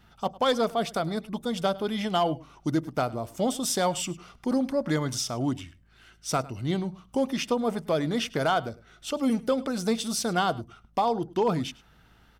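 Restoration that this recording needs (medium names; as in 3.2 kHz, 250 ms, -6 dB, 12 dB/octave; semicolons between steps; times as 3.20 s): clip repair -16.5 dBFS; de-hum 54.7 Hz, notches 4; inverse comb 103 ms -21 dB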